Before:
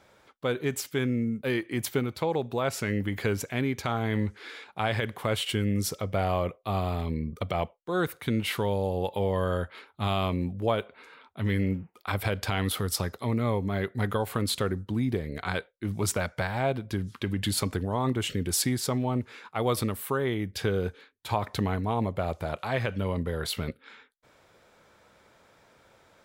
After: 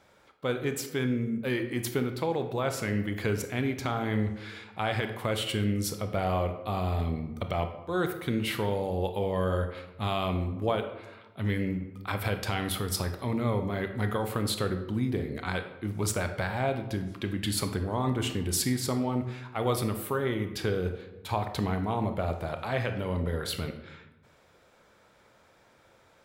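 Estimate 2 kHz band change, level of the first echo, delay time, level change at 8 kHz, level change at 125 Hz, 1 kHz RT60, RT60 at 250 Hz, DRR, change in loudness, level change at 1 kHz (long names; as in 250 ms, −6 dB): −1.0 dB, no echo audible, no echo audible, −1.5 dB, −1.0 dB, 1.0 s, 1.2 s, 7.0 dB, −1.0 dB, −1.0 dB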